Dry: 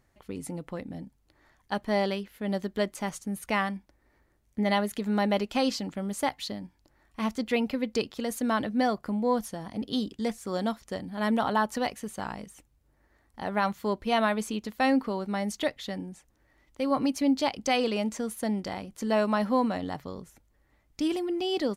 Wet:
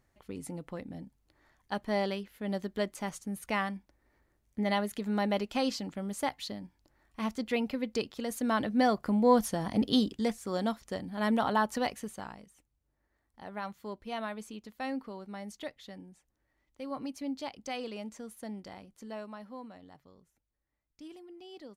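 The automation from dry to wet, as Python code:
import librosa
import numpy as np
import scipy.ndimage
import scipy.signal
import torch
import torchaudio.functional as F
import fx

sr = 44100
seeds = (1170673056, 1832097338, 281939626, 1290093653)

y = fx.gain(x, sr, db=fx.line((8.25, -4.0), (9.76, 6.0), (10.38, -2.0), (12.01, -2.0), (12.43, -12.0), (18.85, -12.0), (19.42, -20.0)))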